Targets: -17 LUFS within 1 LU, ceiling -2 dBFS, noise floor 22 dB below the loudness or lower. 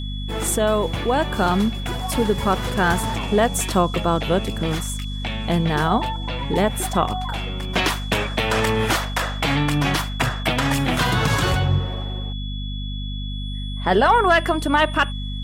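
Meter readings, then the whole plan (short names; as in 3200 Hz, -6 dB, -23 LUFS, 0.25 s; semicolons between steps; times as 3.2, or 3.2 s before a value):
hum 50 Hz; harmonics up to 250 Hz; hum level -25 dBFS; steady tone 3400 Hz; tone level -35 dBFS; loudness -21.5 LUFS; peak -4.0 dBFS; loudness target -17.0 LUFS
-> notches 50/100/150/200/250 Hz; notch 3400 Hz, Q 30; gain +4.5 dB; limiter -2 dBFS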